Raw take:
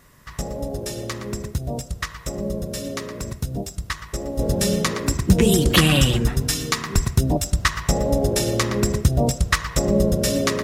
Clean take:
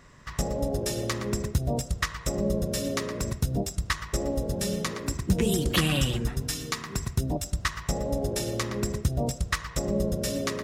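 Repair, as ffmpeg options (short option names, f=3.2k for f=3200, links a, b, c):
-filter_complex "[0:a]asplit=3[a][b][c];[a]afade=t=out:st=6.94:d=0.02[d];[b]highpass=f=140:w=0.5412,highpass=f=140:w=1.3066,afade=t=in:st=6.94:d=0.02,afade=t=out:st=7.06:d=0.02[e];[c]afade=t=in:st=7.06:d=0.02[f];[d][e][f]amix=inputs=3:normalize=0,agate=range=-21dB:threshold=-29dB,asetnsamples=n=441:p=0,asendcmd='4.39 volume volume -8.5dB',volume=0dB"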